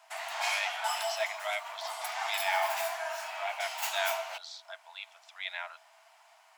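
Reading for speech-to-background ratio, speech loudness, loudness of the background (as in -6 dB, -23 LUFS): -2.5 dB, -37.0 LUFS, -34.5 LUFS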